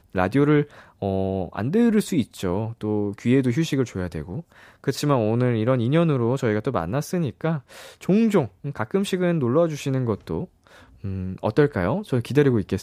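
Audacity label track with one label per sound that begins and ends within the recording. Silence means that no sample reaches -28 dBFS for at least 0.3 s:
1.020000	4.400000	sound
4.870000	7.580000	sound
8.030000	10.440000	sound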